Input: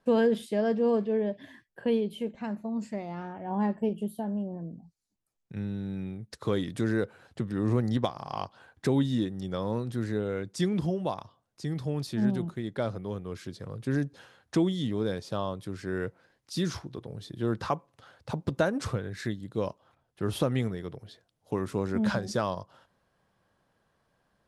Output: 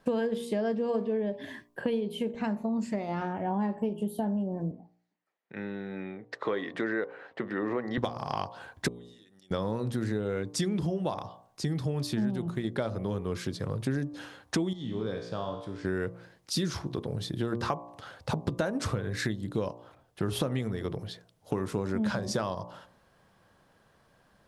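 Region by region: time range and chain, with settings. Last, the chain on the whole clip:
4.71–7.98 BPF 410–2400 Hz + bell 1900 Hz +7.5 dB 0.28 oct
8.88–9.51 differentiator + compressor 10:1, threshold -59 dBFS + LPF 2500 Hz 6 dB/oct
14.73–15.85 air absorption 77 m + resonator 58 Hz, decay 0.89 s, mix 80%
whole clip: de-hum 58.88 Hz, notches 20; compressor 5:1, threshold -36 dBFS; gain +8.5 dB

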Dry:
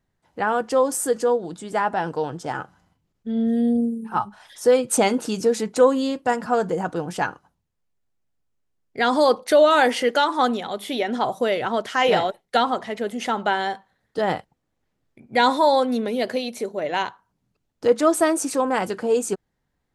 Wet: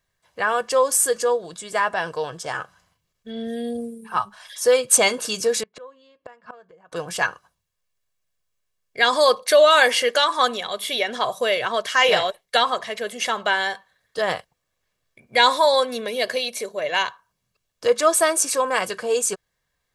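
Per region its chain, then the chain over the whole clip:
5.63–6.92 LPF 2800 Hz + flipped gate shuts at -19 dBFS, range -26 dB
whole clip: tilt shelf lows -7 dB, about 880 Hz; comb 1.8 ms, depth 53%

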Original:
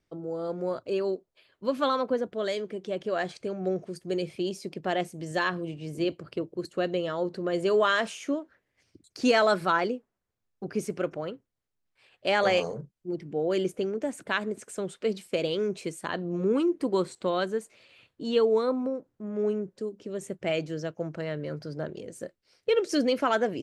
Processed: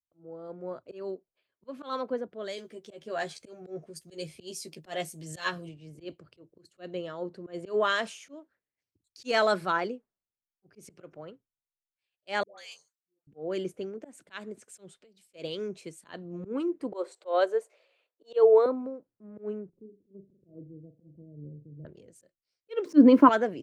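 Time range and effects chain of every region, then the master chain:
2.57–5.69 high shelf 5600 Hz +11 dB + doubler 13 ms -4 dB
12.43–13.27 differentiator + dispersion highs, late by 0.148 s, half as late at 720 Hz
14.9–15.3 bell 720 Hz +5.5 dB 0.3 oct + compressor 12:1, threshold -40 dBFS
16.92–18.66 HPF 400 Hz 24 dB/oct + bell 560 Hz +9 dB 1.3 oct
19.69–21.85 inverse Chebyshev low-pass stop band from 1300 Hz, stop band 60 dB + upward compressor, threshold -49 dBFS + flutter echo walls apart 7 m, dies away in 0.31 s
22.85–23.29 high shelf 4700 Hz -11.5 dB + sample gate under -49 dBFS + small resonant body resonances 290/1000 Hz, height 16 dB, ringing for 25 ms
whole clip: auto swell 0.108 s; three-band expander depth 70%; gain -6.5 dB

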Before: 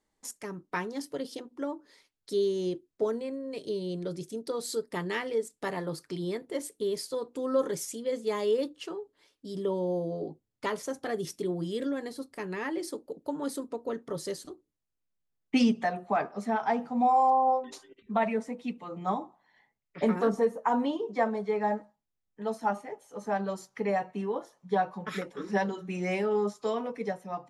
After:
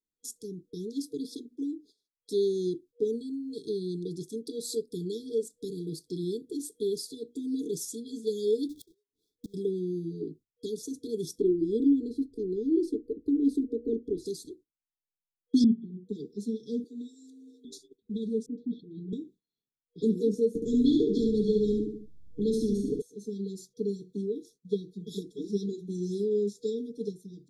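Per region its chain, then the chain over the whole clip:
8.69–9.54 half-waves squared off + low shelf 300 Hz +6 dB + flipped gate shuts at -30 dBFS, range -29 dB
11.38–14.26 tilt -4.5 dB/oct + fixed phaser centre 380 Hz, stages 4
15.64–16.09 vocal tract filter i + bell 120 Hz +7 dB 1.1 oct + comb 5.2 ms, depth 87%
16.84–17.65 HPF 330 Hz 24 dB/oct + notch 5100 Hz, Q 5
18.46–19.13 inverse Chebyshev low-pass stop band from 10000 Hz, stop band 60 dB + dispersion highs, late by 0.118 s, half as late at 800 Hz
20.55–23.02 tilt -4 dB/oct + feedback echo 70 ms, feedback 28%, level -5 dB + spectral compressor 2:1
whole clip: gate -53 dBFS, range -17 dB; FFT band-reject 480–3300 Hz; dynamic EQ 290 Hz, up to +4 dB, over -45 dBFS, Q 3.6

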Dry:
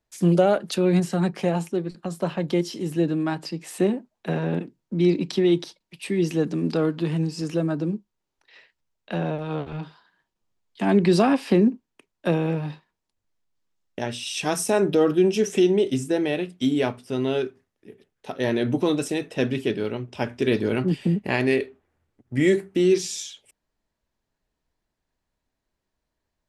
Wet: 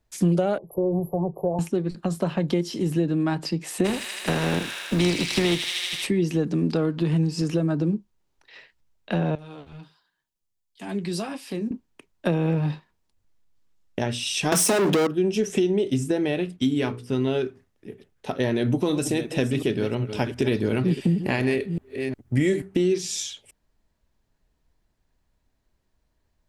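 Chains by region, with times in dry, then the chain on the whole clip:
0.58–1.59 brick-wall FIR band-stop 1200–11000 Hz + fixed phaser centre 560 Hz, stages 4
3.84–6.05 spectral contrast lowered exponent 0.57 + thin delay 79 ms, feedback 82%, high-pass 2000 Hz, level -4 dB
9.35–11.71 pre-emphasis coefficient 0.8 + flange 1.4 Hz, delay 6.4 ms, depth 5.7 ms, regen -43%
14.52–15.07 sample leveller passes 5 + HPF 170 Hz 24 dB/oct
16.56–17.27 bell 650 Hz -7.5 dB 0.53 oct + notches 60/120/180/240/300/360/420/480 Hz + mismatched tape noise reduction decoder only
18.55–22.62 reverse delay 0.359 s, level -12.5 dB + high shelf 6800 Hz +7 dB
whole clip: compressor 3:1, threshold -27 dBFS; low shelf 140 Hz +9 dB; gain +4 dB

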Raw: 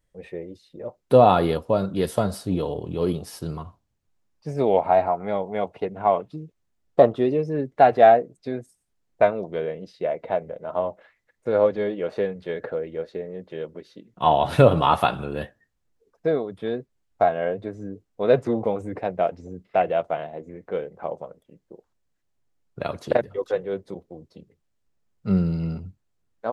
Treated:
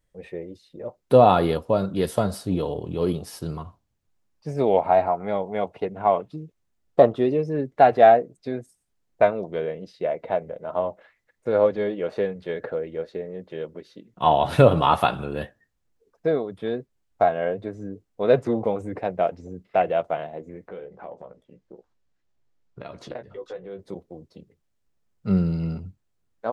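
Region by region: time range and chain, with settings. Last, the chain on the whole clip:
20.68–23.79 LPF 6200 Hz + compressor 2.5:1, threshold -39 dBFS + doubler 16 ms -7 dB
whole clip: dry

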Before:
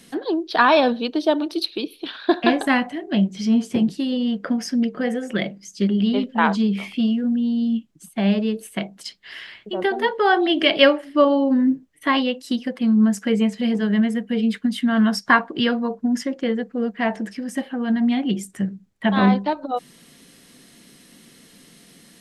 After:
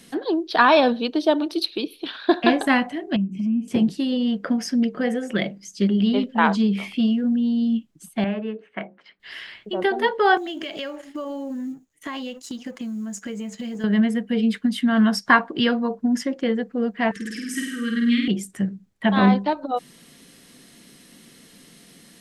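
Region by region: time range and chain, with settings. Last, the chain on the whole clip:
3.16–3.68 EQ curve 110 Hz 0 dB, 280 Hz +10 dB, 460 Hz -11 dB, 970 Hz -14 dB, 1600 Hz -28 dB, 2600 Hz +2 dB, 3800 Hz -28 dB, 8000 Hz -14 dB + compressor 4:1, threshold -22 dBFS
8.24–9.2 LPF 1900 Hz 24 dB/oct + tilt +3.5 dB/oct + notches 60/120/180/240/300/360/420/480/540 Hz
10.37–13.84 G.711 law mismatch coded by A + bell 6800 Hz +14.5 dB 0.25 oct + compressor 16:1, threshold -27 dBFS
17.11–18.28 Chebyshev band-stop 460–1200 Hz, order 4 + tilt shelf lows -5.5 dB, about 1100 Hz + flutter echo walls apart 8.7 m, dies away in 0.91 s
whole clip: dry

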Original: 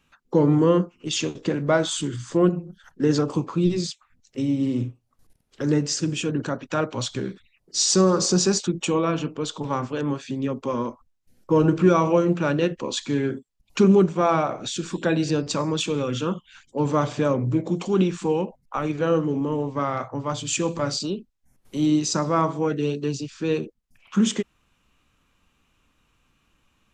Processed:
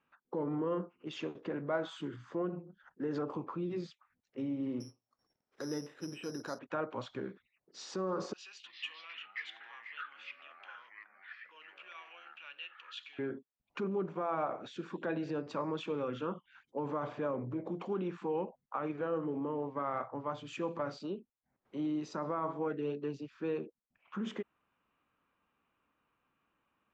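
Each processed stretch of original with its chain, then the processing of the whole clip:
4.8–6.59 low shelf 200 Hz -4.5 dB + compressor 1.5:1, threshold -30 dBFS + careless resampling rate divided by 8×, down filtered, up zero stuff
8.33–13.19 compressor 1.5:1, threshold -34 dBFS + resonant high-pass 2800 Hz + echoes that change speed 0.328 s, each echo -6 st, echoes 2, each echo -6 dB
whole clip: LPF 1600 Hz 12 dB/oct; limiter -17 dBFS; HPF 500 Hz 6 dB/oct; gain -5.5 dB

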